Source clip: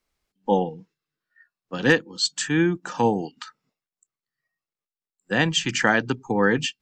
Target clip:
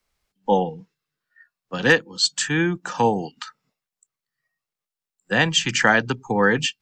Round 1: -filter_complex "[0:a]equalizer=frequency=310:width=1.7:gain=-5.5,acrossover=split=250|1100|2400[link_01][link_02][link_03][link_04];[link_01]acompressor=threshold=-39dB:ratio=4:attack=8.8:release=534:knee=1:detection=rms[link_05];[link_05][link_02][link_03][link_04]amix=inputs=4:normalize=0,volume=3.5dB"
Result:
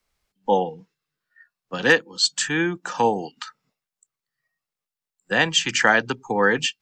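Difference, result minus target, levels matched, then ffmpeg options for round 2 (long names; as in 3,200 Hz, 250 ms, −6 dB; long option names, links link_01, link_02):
downward compressor: peak gain reduction +8.5 dB
-filter_complex "[0:a]equalizer=frequency=310:width=1.7:gain=-5.5,acrossover=split=250|1100|2400[link_01][link_02][link_03][link_04];[link_01]acompressor=threshold=-27.5dB:ratio=4:attack=8.8:release=534:knee=1:detection=rms[link_05];[link_05][link_02][link_03][link_04]amix=inputs=4:normalize=0,volume=3.5dB"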